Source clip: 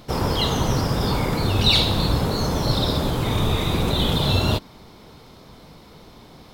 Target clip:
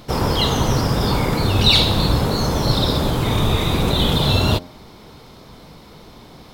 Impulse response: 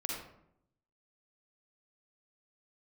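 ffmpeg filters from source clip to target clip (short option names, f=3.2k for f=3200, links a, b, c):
-af "bandreject=f=87.93:t=h:w=4,bandreject=f=175.86:t=h:w=4,bandreject=f=263.79:t=h:w=4,bandreject=f=351.72:t=h:w=4,bandreject=f=439.65:t=h:w=4,bandreject=f=527.58:t=h:w=4,bandreject=f=615.51:t=h:w=4,bandreject=f=703.44:t=h:w=4,bandreject=f=791.37:t=h:w=4,volume=3.5dB"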